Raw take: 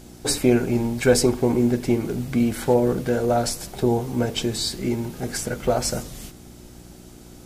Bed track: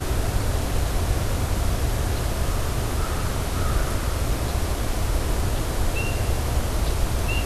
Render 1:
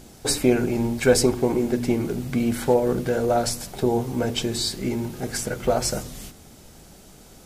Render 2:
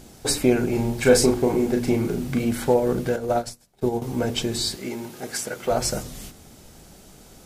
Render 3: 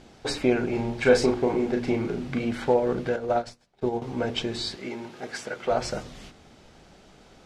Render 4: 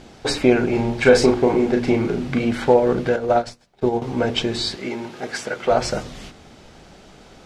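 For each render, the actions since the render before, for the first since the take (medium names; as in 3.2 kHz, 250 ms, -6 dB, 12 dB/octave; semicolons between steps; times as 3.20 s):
de-hum 60 Hz, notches 6
0.69–2.45 s: doubling 36 ms -5 dB; 3.16–4.02 s: upward expansion 2.5:1, over -37 dBFS; 4.76–5.71 s: high-pass 430 Hz 6 dB/octave
low-pass 3.7 kHz 12 dB/octave; bass shelf 340 Hz -7 dB
trim +7 dB; peak limiter -2 dBFS, peak gain reduction 2.5 dB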